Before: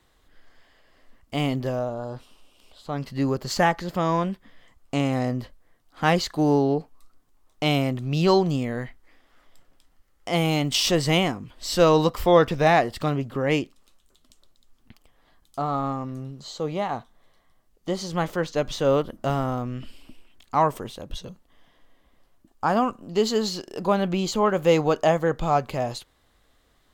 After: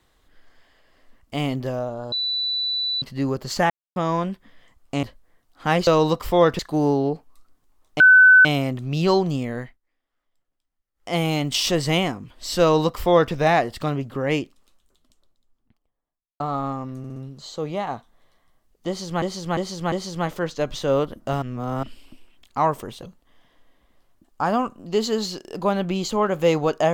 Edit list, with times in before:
2.12–3.02 s: bleep 3.97 kHz -21.5 dBFS
3.70–3.96 s: mute
5.03–5.40 s: delete
7.65 s: add tone 1.51 kHz -7.5 dBFS 0.45 s
8.79–10.33 s: dip -21 dB, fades 0.19 s
11.81–12.53 s: copy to 6.24 s
13.51–15.60 s: studio fade out
16.18 s: stutter 0.06 s, 4 plays
17.89–18.24 s: loop, 4 plays
19.39–19.80 s: reverse
21.00–21.26 s: delete

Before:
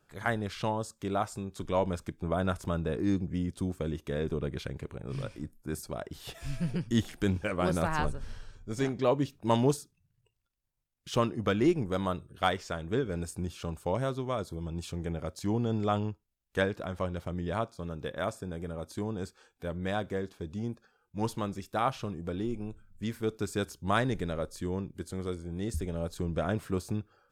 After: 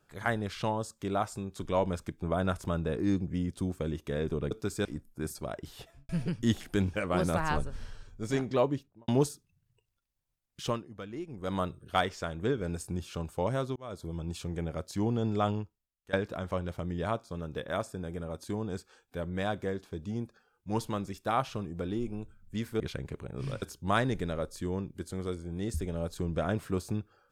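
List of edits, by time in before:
4.51–5.33 s: swap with 23.28–23.62 s
6.13–6.57 s: studio fade out
9.04–9.56 s: studio fade out
11.10–12.03 s: dip -14.5 dB, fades 0.32 s quadratic
14.24–14.56 s: fade in
15.99–16.61 s: fade out, to -19 dB

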